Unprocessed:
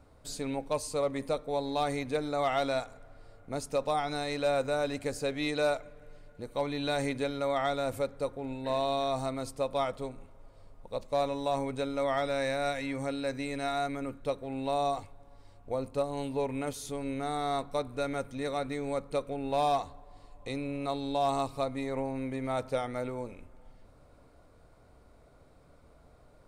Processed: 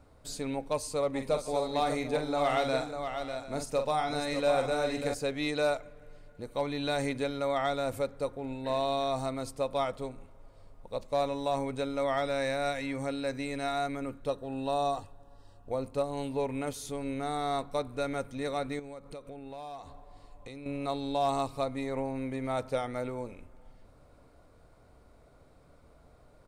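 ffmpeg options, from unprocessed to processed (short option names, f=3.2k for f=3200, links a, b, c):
-filter_complex "[0:a]asplit=3[a][b][c];[a]afade=t=out:st=1.13:d=0.02[d];[b]aecho=1:1:45|597|743:0.447|0.447|0.158,afade=t=in:st=1.13:d=0.02,afade=t=out:st=5.13:d=0.02[e];[c]afade=t=in:st=5.13:d=0.02[f];[d][e][f]amix=inputs=3:normalize=0,asettb=1/sr,asplit=3[g][h][i];[g]atrim=end=14.284[j];[h]atrim=start=14.28:end=15.71,asetpts=PTS-STARTPTS,afade=t=in:d=0.004:c=qsin,afade=t=out:st=1.426:d=0.004:c=qsin,asuperstop=centerf=2200:order=20:qfactor=4.8[k];[i]atrim=start=15.706[l];[j][k]acrossfade=d=0.004:c1=hsin:c2=qsin[m];[m][l]acrossfade=d=0.004:c1=qsin:c2=hsin,asettb=1/sr,asplit=3[n][o][p];[n]atrim=end=18.794[q];[o]atrim=start=18.79:end=20.66,asetpts=PTS-STARTPTS,afade=t=in:d=0.004:c=qsin,afade=t=out:st=1.866:d=0.004:c=qsin,acompressor=threshold=-41dB:ratio=5:attack=3.2:release=140:knee=1:detection=peak[r];[p]atrim=start=20.656[s];[q][r]acrossfade=d=0.004:c1=hsin:c2=qsin[t];[t][s]acrossfade=d=0.004:c1=qsin:c2=hsin"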